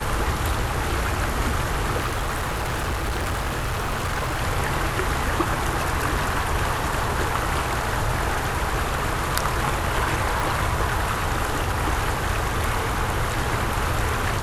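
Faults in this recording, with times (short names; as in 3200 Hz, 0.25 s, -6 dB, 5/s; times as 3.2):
1.97–4.41 clipped -21.5 dBFS
10.4 pop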